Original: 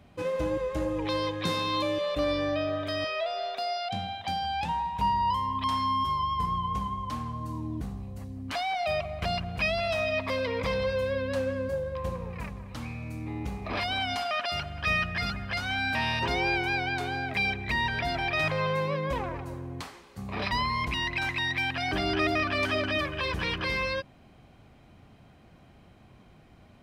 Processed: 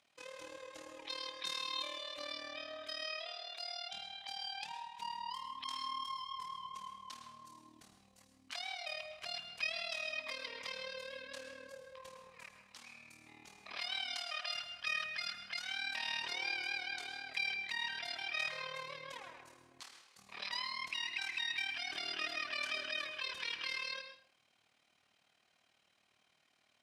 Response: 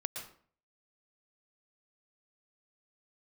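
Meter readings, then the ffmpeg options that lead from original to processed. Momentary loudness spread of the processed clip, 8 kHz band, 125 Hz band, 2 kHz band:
17 LU, −3.5 dB, −35.0 dB, −9.5 dB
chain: -filter_complex "[0:a]lowpass=6700,aderivative,bandreject=frequency=60:width_type=h:width=6,bandreject=frequency=120:width_type=h:width=6,bandreject=frequency=180:width_type=h:width=6,tremolo=f=38:d=0.788,asplit=2[link_01][link_02];[1:a]atrim=start_sample=2205[link_03];[link_02][link_03]afir=irnorm=-1:irlink=0,volume=1.5dB[link_04];[link_01][link_04]amix=inputs=2:normalize=0,volume=-2.5dB"

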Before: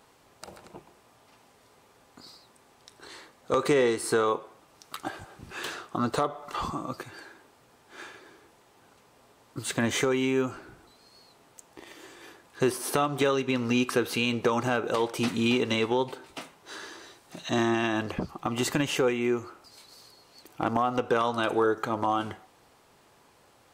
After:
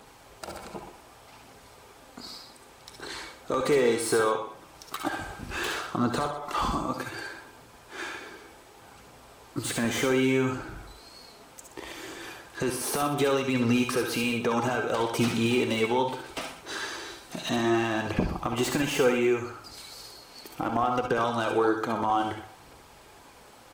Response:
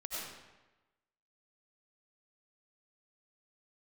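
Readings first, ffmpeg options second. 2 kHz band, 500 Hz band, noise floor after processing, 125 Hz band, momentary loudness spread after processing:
+1.5 dB, +0.5 dB, −52 dBFS, +1.5 dB, 19 LU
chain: -filter_complex "[0:a]asplit=2[link_01][link_02];[link_02]acompressor=threshold=-37dB:ratio=6,volume=0dB[link_03];[link_01][link_03]amix=inputs=2:normalize=0,alimiter=limit=-16dB:level=0:latency=1:release=186,aphaser=in_gain=1:out_gain=1:delay=4.9:decay=0.3:speed=0.66:type=triangular,acrossover=split=660|1100[link_04][link_05][link_06];[link_06]asoftclip=type=hard:threshold=-30dB[link_07];[link_04][link_05][link_07]amix=inputs=3:normalize=0,aecho=1:1:123:0.237[link_08];[1:a]atrim=start_sample=2205,atrim=end_sample=3969,asetrate=52920,aresample=44100[link_09];[link_08][link_09]afir=irnorm=-1:irlink=0,volume=7.5dB"

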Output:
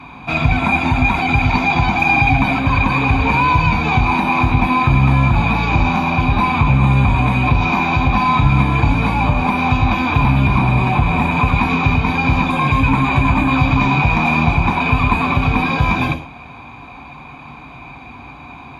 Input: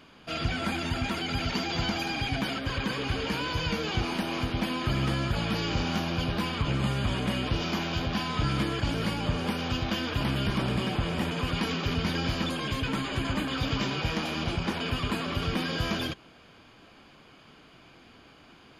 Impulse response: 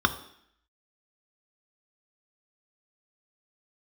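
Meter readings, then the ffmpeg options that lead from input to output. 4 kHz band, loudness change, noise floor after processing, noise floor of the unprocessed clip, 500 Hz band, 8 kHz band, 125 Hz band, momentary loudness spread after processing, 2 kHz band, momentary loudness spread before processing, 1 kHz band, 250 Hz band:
+2.5 dB, +14.5 dB, −36 dBFS, −55 dBFS, +8.0 dB, can't be measured, +15.5 dB, 3 LU, +16.0 dB, 2 LU, +19.0 dB, +13.0 dB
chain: -filter_complex "[0:a]acompressor=threshold=-29dB:ratio=6[link_01];[1:a]atrim=start_sample=2205,afade=type=out:start_time=0.14:duration=0.01,atrim=end_sample=6615,asetrate=30429,aresample=44100[link_02];[link_01][link_02]afir=irnorm=-1:irlink=0,volume=1dB"

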